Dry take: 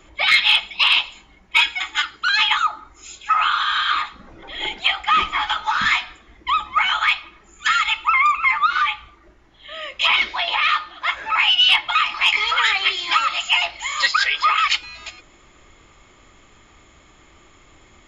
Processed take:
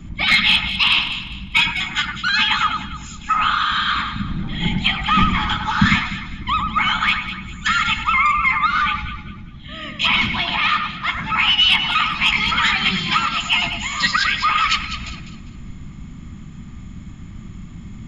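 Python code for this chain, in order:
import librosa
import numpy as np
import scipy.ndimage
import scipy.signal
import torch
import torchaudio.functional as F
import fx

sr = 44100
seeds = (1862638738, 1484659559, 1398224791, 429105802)

p1 = fx.octave_divider(x, sr, octaves=1, level_db=-2.0)
p2 = fx.low_shelf_res(p1, sr, hz=310.0, db=14.0, q=3.0)
y = p2 + fx.echo_alternate(p2, sr, ms=100, hz=2200.0, feedback_pct=57, wet_db=-5.0, dry=0)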